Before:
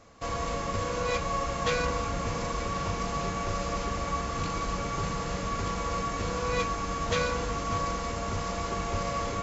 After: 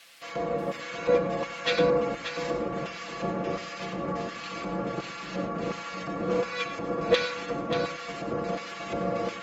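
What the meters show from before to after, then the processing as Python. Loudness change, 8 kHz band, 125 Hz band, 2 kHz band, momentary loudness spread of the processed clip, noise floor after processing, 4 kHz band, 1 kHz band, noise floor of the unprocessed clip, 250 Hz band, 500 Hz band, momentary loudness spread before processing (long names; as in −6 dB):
+1.0 dB, can't be measured, −5.0 dB, +1.0 dB, 9 LU, −40 dBFS, +1.5 dB, −3.5 dB, −34 dBFS, +2.5 dB, +5.0 dB, 4 LU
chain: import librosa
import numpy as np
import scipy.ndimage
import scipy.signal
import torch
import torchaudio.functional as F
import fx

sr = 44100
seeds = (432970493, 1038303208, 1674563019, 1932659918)

p1 = fx.dmg_noise_colour(x, sr, seeds[0], colour='white', level_db=-49.0)
p2 = fx.spec_gate(p1, sr, threshold_db=-30, keep='strong')
p3 = fx.graphic_eq_15(p2, sr, hz=(250, 1000, 6300), db=(5, -5, -4))
p4 = fx.filter_lfo_bandpass(p3, sr, shape='square', hz=1.4, low_hz=480.0, high_hz=2700.0, q=0.81)
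p5 = scipy.signal.sosfilt(scipy.signal.butter(2, 49.0, 'highpass', fs=sr, output='sos'), p4)
p6 = p5 + 0.7 * np.pad(p5, (int(5.9 * sr / 1000.0), 0))[:len(p5)]
p7 = p6 + fx.echo_multitap(p6, sr, ms=(94, 112, 583), db=(-12.5, -13.5, -6.0), dry=0)
p8 = fx.upward_expand(p7, sr, threshold_db=-39.0, expansion=1.5)
y = F.gain(torch.from_numpy(p8), 8.0).numpy()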